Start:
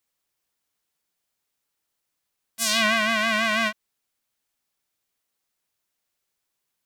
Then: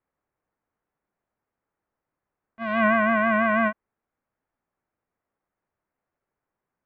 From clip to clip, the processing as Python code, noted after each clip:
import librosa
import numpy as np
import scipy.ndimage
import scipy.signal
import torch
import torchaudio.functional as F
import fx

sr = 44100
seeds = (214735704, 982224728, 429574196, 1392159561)

y = scipy.signal.sosfilt(scipy.signal.bessel(6, 1200.0, 'lowpass', norm='mag', fs=sr, output='sos'), x)
y = y * librosa.db_to_amplitude(6.0)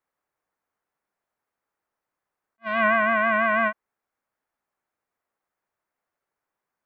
y = fx.low_shelf(x, sr, hz=390.0, db=-12.0)
y = fx.attack_slew(y, sr, db_per_s=550.0)
y = y * librosa.db_to_amplitude(2.5)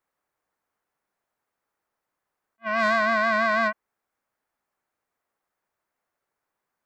y = 10.0 ** (-15.5 / 20.0) * np.tanh(x / 10.0 ** (-15.5 / 20.0))
y = y * librosa.db_to_amplitude(2.0)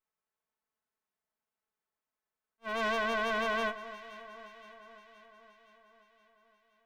y = fx.lower_of_two(x, sr, delay_ms=4.6)
y = fx.echo_alternate(y, sr, ms=260, hz=1700.0, feedback_pct=76, wet_db=-13.0)
y = y * librosa.db_to_amplitude(-9.0)